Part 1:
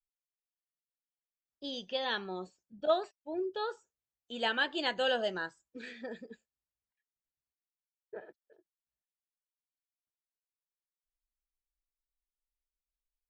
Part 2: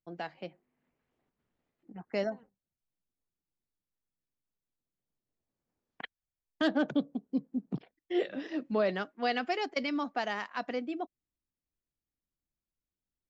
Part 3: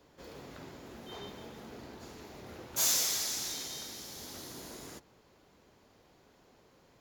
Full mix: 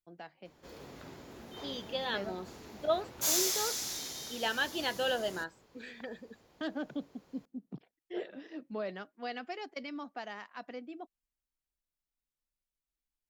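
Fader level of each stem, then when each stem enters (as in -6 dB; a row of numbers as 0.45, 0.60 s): -1.5, -9.0, -1.0 dB; 0.00, 0.00, 0.45 s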